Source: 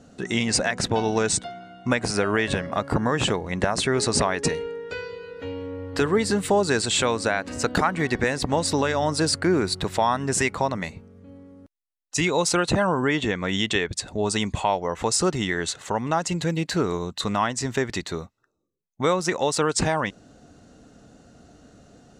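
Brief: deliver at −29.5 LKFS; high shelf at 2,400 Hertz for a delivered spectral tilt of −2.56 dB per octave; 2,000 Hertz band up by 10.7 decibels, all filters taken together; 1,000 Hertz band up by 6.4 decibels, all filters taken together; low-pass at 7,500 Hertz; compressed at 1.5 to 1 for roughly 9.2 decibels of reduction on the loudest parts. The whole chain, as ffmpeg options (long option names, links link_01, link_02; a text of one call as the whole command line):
ffmpeg -i in.wav -af "lowpass=7500,equalizer=frequency=1000:width_type=o:gain=4.5,equalizer=frequency=2000:width_type=o:gain=8,highshelf=frequency=2400:gain=8,acompressor=threshold=-37dB:ratio=1.5,volume=-3dB" out.wav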